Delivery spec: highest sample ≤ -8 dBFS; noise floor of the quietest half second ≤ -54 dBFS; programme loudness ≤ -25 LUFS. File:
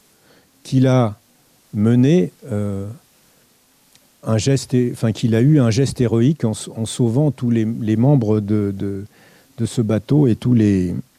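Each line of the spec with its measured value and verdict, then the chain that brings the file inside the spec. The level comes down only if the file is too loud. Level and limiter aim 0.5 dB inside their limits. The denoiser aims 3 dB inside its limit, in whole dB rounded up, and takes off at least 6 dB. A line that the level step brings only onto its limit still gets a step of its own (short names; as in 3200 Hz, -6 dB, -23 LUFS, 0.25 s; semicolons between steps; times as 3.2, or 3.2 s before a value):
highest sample -5.0 dBFS: fail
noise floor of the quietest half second -56 dBFS: OK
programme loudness -17.5 LUFS: fail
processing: gain -8 dB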